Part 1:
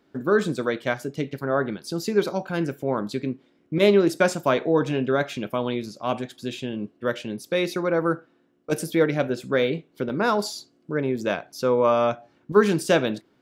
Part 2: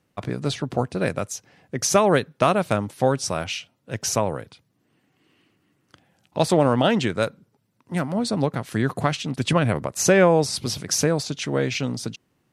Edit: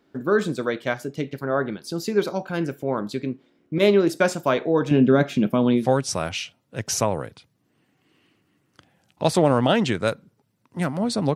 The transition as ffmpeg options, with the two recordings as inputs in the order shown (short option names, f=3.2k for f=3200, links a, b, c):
-filter_complex "[0:a]asettb=1/sr,asplit=3[a][b][c];[a]atrim=end=4.914[d];[b]atrim=start=4.91:end=5.89,asetpts=PTS-STARTPTS,afade=t=in:d=0.004:c=qsin,afade=t=out:st=0.976:d=0.004:c=qsin,equalizer=f=200:w=0.88:g=13[e];[c]atrim=start=5.886[f];[d][e]acrossfade=d=0.004:c1=hsin:c2=qsin[g];[g][f]acrossfade=d=0.004:c1=qsin:c2=hsin,apad=whole_dur=11.35,atrim=end=11.35,atrim=end=5.89,asetpts=PTS-STARTPTS[h];[1:a]atrim=start=2.9:end=8.5,asetpts=PTS-STARTPTS[i];[h][i]acrossfade=d=0.14:c1=tri:c2=tri"